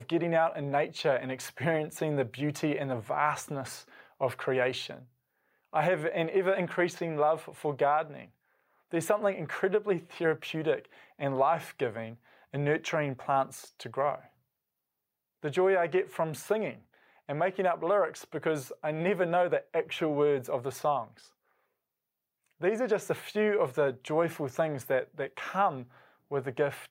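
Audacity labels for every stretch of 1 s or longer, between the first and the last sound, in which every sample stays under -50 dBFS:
14.270000	15.430000	silence
21.280000	22.610000	silence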